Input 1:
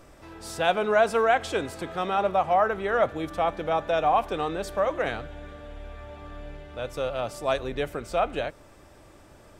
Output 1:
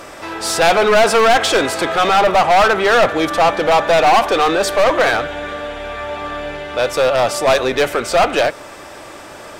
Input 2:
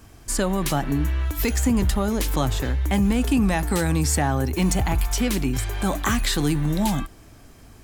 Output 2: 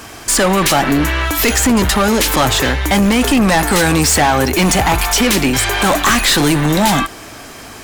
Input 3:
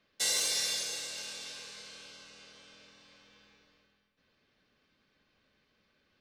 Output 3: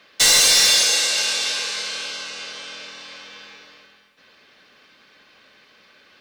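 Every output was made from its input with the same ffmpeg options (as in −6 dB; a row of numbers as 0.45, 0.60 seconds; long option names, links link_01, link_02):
-filter_complex "[0:a]asplit=2[link_01][link_02];[link_02]highpass=frequency=720:poles=1,volume=22dB,asoftclip=type=tanh:threshold=-8.5dB[link_03];[link_01][link_03]amix=inputs=2:normalize=0,lowpass=frequency=6900:poles=1,volume=-6dB,aeval=exprs='clip(val(0),-1,0.133)':channel_layout=same,volume=6dB"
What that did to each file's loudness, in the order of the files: +12.0, +10.0, +16.0 LU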